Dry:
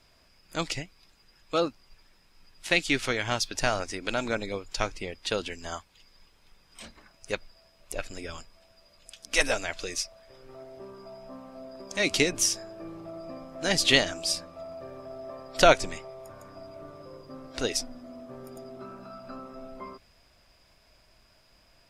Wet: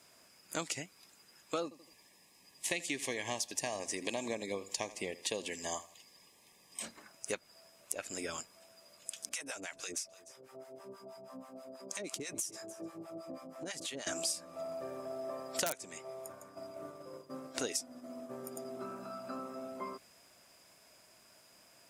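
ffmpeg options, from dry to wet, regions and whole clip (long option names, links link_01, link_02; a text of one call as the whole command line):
ffmpeg -i in.wav -filter_complex "[0:a]asettb=1/sr,asplit=3[link_01][link_02][link_03];[link_01]atrim=end=1.634[link_04];[link_02]atrim=start=1.63:end=6.82,asetpts=PTS-STARTPTS,afade=type=in:duration=0.004:curve=qsin,afade=type=out:start_time=5.186:duration=0.004:curve=qsin,asuperstop=centerf=1400:order=12:qfactor=3.3,aecho=1:1:81|162|243:0.112|0.0404|0.0145,atrim=end_sample=228879[link_05];[link_03]atrim=start=6.816[link_06];[link_04][link_05]acrossfade=duration=0.004:curve1=hsin:curve2=qsin[link_07];[link_07][link_06]acrossfade=duration=0.004:curve1=qsin:curve2=hsin,asettb=1/sr,asplit=3[link_08][link_09][link_10];[link_08]atrim=end=9.294[link_11];[link_09]atrim=start=9.29:end=14.07,asetpts=PTS-STARTPTS,afade=type=in:duration=0.004:curve=qsin,afade=type=out:start_time=4.776:duration=0.004:curve=qsin,acrossover=split=710[link_12][link_13];[link_12]aeval=exprs='val(0)*(1-1/2+1/2*cos(2*PI*6.2*n/s))':channel_layout=same[link_14];[link_13]aeval=exprs='val(0)*(1-1/2-1/2*cos(2*PI*6.2*n/s))':channel_layout=same[link_15];[link_14][link_15]amix=inputs=2:normalize=0,acompressor=threshold=-37dB:ratio=12:attack=3.2:release=140:knee=1:detection=peak,aecho=1:1:300:0.106,atrim=end_sample=210798[link_16];[link_10]atrim=start=14.066[link_17];[link_11][link_16]acrossfade=duration=0.004:curve1=hsin:curve2=qsin[link_18];[link_18][link_17]acrossfade=duration=0.004:curve1=qsin:curve2=hsin,asettb=1/sr,asplit=3[link_19][link_20][link_21];[link_19]atrim=end=15.644[link_22];[link_20]atrim=start=15.64:end=18.65,asetpts=PTS-STARTPTS,afade=type=in:duration=0.004:curve=qsin,afade=type=out:start_time=3.006:duration=0.004:curve=qsin,agate=range=-33dB:threshold=-43dB:ratio=3:release=100:detection=peak,aeval=exprs='(mod(1.88*val(0)+1,2)-1)/1.88':channel_layout=same[link_23];[link_21]atrim=start=18.646[link_24];[link_22][link_23]acrossfade=duration=0.004:curve1=hsin:curve2=qsin[link_25];[link_25][link_24]acrossfade=duration=0.004:curve1=qsin:curve2=hsin,highpass=180,highshelf=frequency=5900:width_type=q:width=1.5:gain=7.5,acompressor=threshold=-33dB:ratio=8" out.wav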